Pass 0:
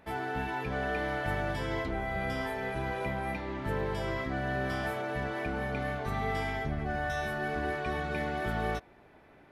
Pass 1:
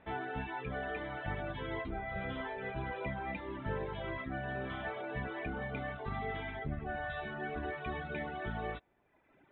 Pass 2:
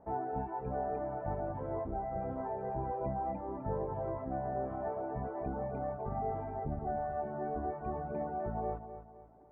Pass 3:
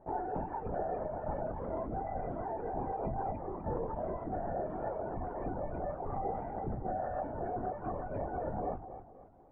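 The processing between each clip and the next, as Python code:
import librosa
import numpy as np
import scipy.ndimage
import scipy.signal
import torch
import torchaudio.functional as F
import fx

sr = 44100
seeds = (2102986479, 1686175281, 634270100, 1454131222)

y1 = fx.dereverb_blind(x, sr, rt60_s=1.2)
y1 = scipy.signal.sosfilt(scipy.signal.butter(16, 3800.0, 'lowpass', fs=sr, output='sos'), y1)
y1 = fx.rider(y1, sr, range_db=10, speed_s=0.5)
y1 = y1 * librosa.db_to_amplitude(-3.0)
y2 = fx.ladder_lowpass(y1, sr, hz=950.0, resonance_pct=40)
y2 = fx.echo_feedback(y2, sr, ms=254, feedback_pct=40, wet_db=-11)
y2 = y2 * librosa.db_to_amplitude(8.5)
y3 = fx.lpc_vocoder(y2, sr, seeds[0], excitation='whisper', order=16)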